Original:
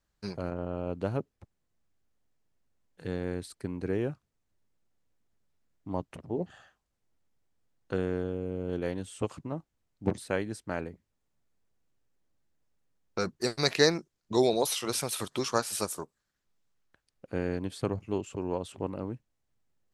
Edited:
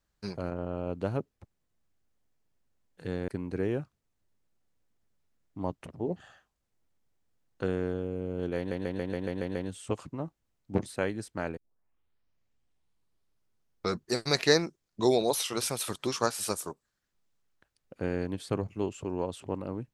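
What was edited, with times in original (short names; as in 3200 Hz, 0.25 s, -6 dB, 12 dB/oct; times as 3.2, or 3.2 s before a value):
3.28–3.58 cut
8.87 stutter 0.14 s, 8 plays
10.89 tape start 2.45 s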